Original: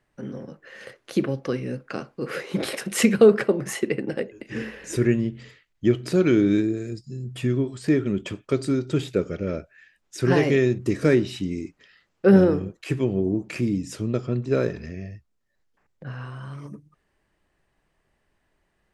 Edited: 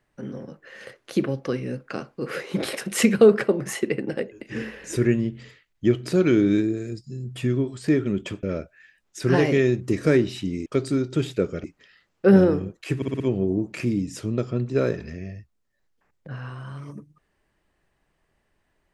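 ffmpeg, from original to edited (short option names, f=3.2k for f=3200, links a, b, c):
-filter_complex "[0:a]asplit=8[a][b][c][d][e][f][g][h];[a]atrim=end=8.432[i];[b]atrim=start=9.408:end=11.642[j];[c]atrim=start=8.428:end=9.412[k];[d]atrim=start=11.638:end=13.022[l];[e]atrim=start=12.958:end=13.022[m];[f]atrim=start=12.958:end=13.022[n];[g]atrim=start=12.958:end=13.022[o];[h]atrim=start=12.958[p];[i][j]acrossfade=d=0.004:c1=hsin:c2=hsin[q];[q][k]acrossfade=d=0.004:c1=hsin:c2=hsin[r];[r][l]acrossfade=d=0.004:c1=hsin:c2=hsin[s];[s][m]acrossfade=d=0.004:c1=hsin:c2=hsin[t];[t][n]acrossfade=d=0.004:c1=hsin:c2=hsin[u];[u][o]acrossfade=d=0.004:c1=hsin:c2=hsin[v];[v][p]acrossfade=d=0.004:c1=hsin:c2=hsin"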